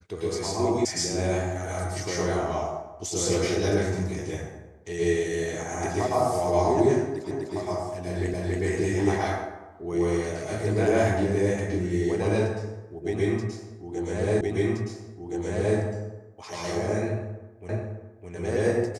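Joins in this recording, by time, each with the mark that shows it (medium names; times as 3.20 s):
0.85 s: sound stops dead
7.31 s: repeat of the last 0.25 s
8.34 s: repeat of the last 0.28 s
14.41 s: repeat of the last 1.37 s
17.69 s: repeat of the last 0.61 s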